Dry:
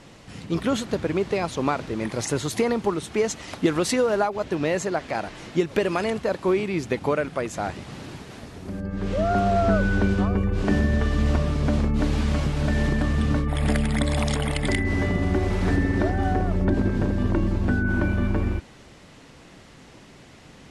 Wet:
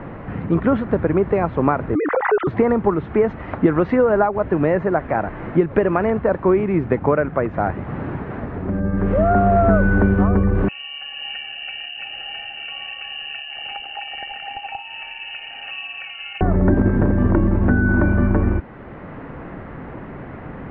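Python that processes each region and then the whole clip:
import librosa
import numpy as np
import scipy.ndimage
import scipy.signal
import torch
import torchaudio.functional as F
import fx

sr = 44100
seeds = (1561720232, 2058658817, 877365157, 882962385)

y = fx.chain(x, sr, fx.sine_speech(),
    fx.pre_swell(db_per_s=64.0), at=(1.95, 2.47))
y = fx.chain(y, sr, fx.octave_resonator(note='C', decay_s=0.1),
    fx.freq_invert(carrier_hz=2900), at=(10.68, 16.41))
y = scipy.signal.sosfilt(scipy.signal.cheby2(4, 80, 9000.0, 'lowpass', fs=sr, output='sos'), y)
y = fx.band_squash(y, sr, depth_pct=40)
y = y * librosa.db_to_amplitude(6.5)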